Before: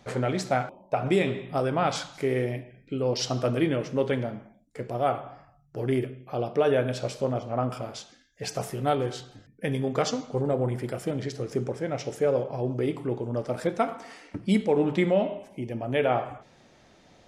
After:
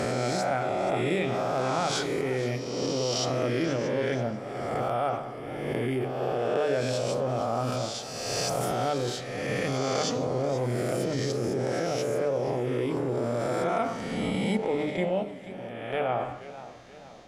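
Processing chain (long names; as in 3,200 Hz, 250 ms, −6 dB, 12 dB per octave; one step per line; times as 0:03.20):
peak hold with a rise ahead of every peak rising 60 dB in 1.56 s
0:14.57–0:16.09: noise gate −19 dBFS, range −13 dB
mains-hum notches 50/100/150/200/250/300/350/400/450 Hz
in parallel at 0 dB: compressor whose output falls as the input rises −29 dBFS, ratio −1
on the sum: feedback echo with a swinging delay time 481 ms, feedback 48%, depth 113 cents, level −15 dB
level −7.5 dB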